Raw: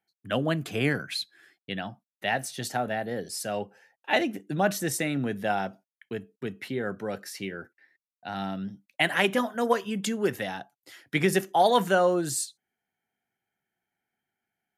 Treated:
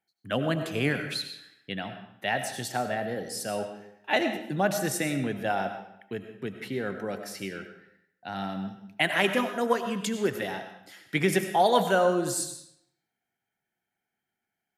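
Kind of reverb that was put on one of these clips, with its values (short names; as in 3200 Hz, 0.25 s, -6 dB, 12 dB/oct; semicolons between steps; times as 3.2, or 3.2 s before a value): digital reverb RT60 0.75 s, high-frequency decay 0.9×, pre-delay 55 ms, DRR 7.5 dB; gain -1 dB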